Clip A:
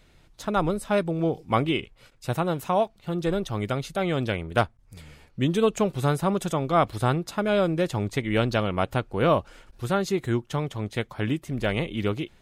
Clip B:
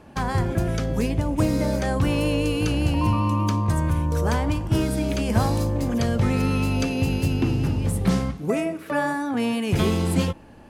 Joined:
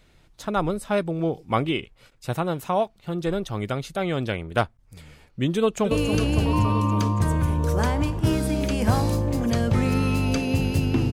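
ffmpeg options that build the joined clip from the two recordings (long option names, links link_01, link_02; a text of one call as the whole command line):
ffmpeg -i cue0.wav -i cue1.wav -filter_complex "[0:a]apad=whole_dur=11.12,atrim=end=11.12,atrim=end=5.912[link_01];[1:a]atrim=start=2.388:end=7.6[link_02];[link_01][link_02]acrossfade=duration=0.004:curve1=hsin:curve2=hsin,asplit=2[link_03][link_04];[link_04]afade=type=in:start_time=5.56:duration=0.01,afade=type=out:start_time=5.91:duration=0.01,aecho=0:1:280|560|840|1120|1400|1680|1960|2240|2520|2800|3080|3360:0.421697|0.316272|0.237204|0.177903|0.133427|0.100071|0.0750529|0.0562897|0.0422173|0.0316629|0.0237472|0.0178104[link_05];[link_03][link_05]amix=inputs=2:normalize=0" out.wav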